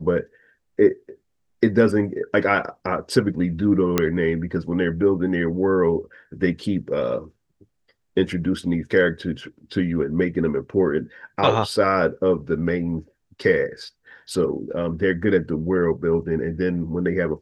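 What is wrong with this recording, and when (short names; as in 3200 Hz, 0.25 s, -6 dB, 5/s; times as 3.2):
3.98 pop -4 dBFS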